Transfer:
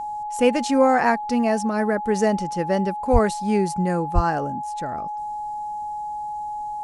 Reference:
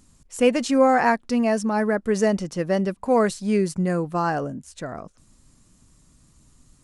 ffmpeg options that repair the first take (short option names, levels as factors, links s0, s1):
-filter_complex "[0:a]bandreject=f=840:w=30,asplit=3[s0][s1][s2];[s0]afade=t=out:st=3.12:d=0.02[s3];[s1]highpass=f=140:w=0.5412,highpass=f=140:w=1.3066,afade=t=in:st=3.12:d=0.02,afade=t=out:st=3.24:d=0.02[s4];[s2]afade=t=in:st=3.24:d=0.02[s5];[s3][s4][s5]amix=inputs=3:normalize=0,asplit=3[s6][s7][s8];[s6]afade=t=out:st=4.14:d=0.02[s9];[s7]highpass=f=140:w=0.5412,highpass=f=140:w=1.3066,afade=t=in:st=4.14:d=0.02,afade=t=out:st=4.26:d=0.02[s10];[s8]afade=t=in:st=4.26:d=0.02[s11];[s9][s10][s11]amix=inputs=3:normalize=0"